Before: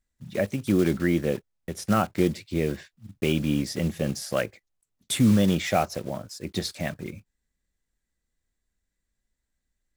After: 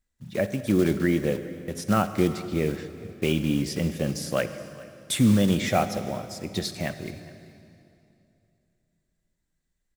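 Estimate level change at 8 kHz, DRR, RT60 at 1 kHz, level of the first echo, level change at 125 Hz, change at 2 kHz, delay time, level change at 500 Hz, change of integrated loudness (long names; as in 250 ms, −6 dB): +0.5 dB, 10.5 dB, 2.6 s, −21.5 dB, +0.5 dB, +0.5 dB, 417 ms, +0.5 dB, 0.0 dB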